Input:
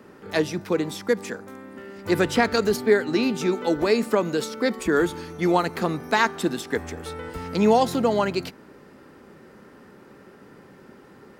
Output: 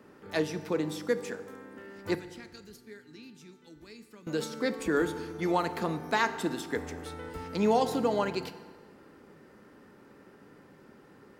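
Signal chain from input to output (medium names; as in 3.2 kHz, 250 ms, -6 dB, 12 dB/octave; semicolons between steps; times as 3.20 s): 2.15–4.27 s: amplifier tone stack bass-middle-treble 6-0-2; FDN reverb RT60 1.6 s, low-frequency decay 1×, high-frequency decay 0.7×, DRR 11 dB; trim -7 dB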